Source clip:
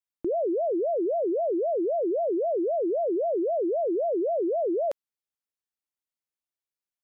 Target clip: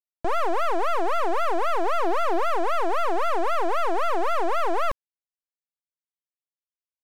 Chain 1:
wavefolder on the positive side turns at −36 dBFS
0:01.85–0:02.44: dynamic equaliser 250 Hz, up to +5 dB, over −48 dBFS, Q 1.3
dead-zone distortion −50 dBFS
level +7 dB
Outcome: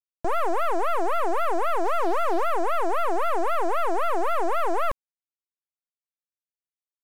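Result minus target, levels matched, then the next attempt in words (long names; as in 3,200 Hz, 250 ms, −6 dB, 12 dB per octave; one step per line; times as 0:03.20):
dead-zone distortion: distortion +11 dB
wavefolder on the positive side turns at −36 dBFS
0:01.85–0:02.44: dynamic equaliser 250 Hz, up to +5 dB, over −48 dBFS, Q 1.3
dead-zone distortion −61 dBFS
level +7 dB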